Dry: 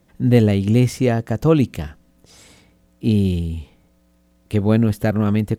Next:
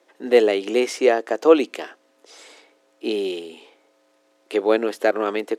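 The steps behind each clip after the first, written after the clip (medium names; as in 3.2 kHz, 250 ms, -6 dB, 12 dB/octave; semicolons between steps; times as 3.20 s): steep high-pass 340 Hz 36 dB/octave; distance through air 54 m; trim +4.5 dB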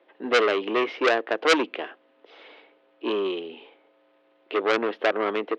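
elliptic band-pass 120–3200 Hz, stop band 40 dB; transformer saturation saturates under 3 kHz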